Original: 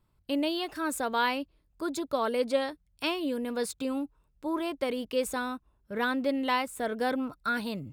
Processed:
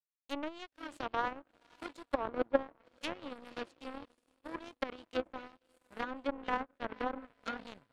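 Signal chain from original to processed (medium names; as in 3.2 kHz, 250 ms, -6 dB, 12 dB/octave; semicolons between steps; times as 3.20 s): echo that smears into a reverb 523 ms, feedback 56%, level -10 dB; power-law waveshaper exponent 3; low-pass that closes with the level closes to 1.2 kHz, closed at -39.5 dBFS; trim +7 dB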